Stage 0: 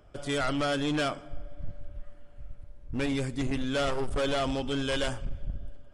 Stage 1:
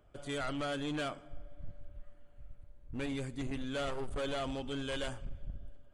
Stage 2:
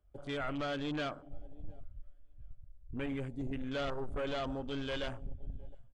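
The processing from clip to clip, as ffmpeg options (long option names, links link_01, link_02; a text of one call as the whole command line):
ffmpeg -i in.wav -af "bandreject=frequency=5300:width=5.6,volume=-8dB" out.wav
ffmpeg -i in.wav -filter_complex "[0:a]asplit=2[link_01][link_02];[link_02]adelay=712,lowpass=frequency=4400:poles=1,volume=-20.5dB,asplit=2[link_03][link_04];[link_04]adelay=712,lowpass=frequency=4400:poles=1,volume=0.31[link_05];[link_01][link_03][link_05]amix=inputs=3:normalize=0,afwtdn=0.00398" out.wav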